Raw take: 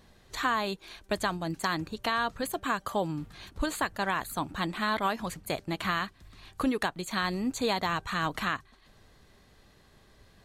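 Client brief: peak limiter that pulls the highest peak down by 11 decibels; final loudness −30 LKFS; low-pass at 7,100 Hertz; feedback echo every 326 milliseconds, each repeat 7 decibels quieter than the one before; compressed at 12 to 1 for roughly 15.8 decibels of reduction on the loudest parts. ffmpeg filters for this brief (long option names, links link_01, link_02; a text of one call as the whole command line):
ffmpeg -i in.wav -af "lowpass=7100,acompressor=threshold=-40dB:ratio=12,alimiter=level_in=11.5dB:limit=-24dB:level=0:latency=1,volume=-11.5dB,aecho=1:1:326|652|978|1304|1630:0.447|0.201|0.0905|0.0407|0.0183,volume=16dB" out.wav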